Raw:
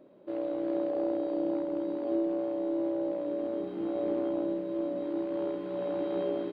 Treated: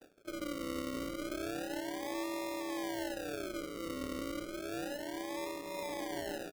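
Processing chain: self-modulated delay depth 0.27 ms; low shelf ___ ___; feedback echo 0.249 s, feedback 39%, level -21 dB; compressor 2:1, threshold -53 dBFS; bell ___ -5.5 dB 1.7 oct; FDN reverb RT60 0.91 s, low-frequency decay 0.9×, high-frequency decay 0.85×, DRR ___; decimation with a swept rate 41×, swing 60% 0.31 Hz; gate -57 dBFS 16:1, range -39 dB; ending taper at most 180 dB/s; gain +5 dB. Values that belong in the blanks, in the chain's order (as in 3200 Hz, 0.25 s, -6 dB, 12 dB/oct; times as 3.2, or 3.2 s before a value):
86 Hz, -10.5 dB, 120 Hz, 12.5 dB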